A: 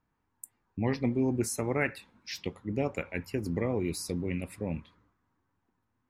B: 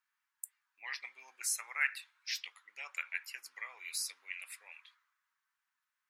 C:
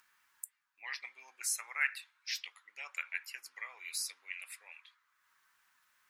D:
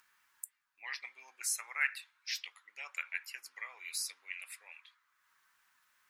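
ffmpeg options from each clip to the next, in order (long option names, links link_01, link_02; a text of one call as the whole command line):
ffmpeg -i in.wav -af "highpass=frequency=1400:width=0.5412,highpass=frequency=1400:width=1.3066,volume=1.5dB" out.wav
ffmpeg -i in.wav -af "acompressor=mode=upward:threshold=-58dB:ratio=2.5" out.wav
ffmpeg -i in.wav -af "aeval=exprs='0.15*(cos(1*acos(clip(val(0)/0.15,-1,1)))-cos(1*PI/2))+0.00106*(cos(2*acos(clip(val(0)/0.15,-1,1)))-cos(2*PI/2))':channel_layout=same" out.wav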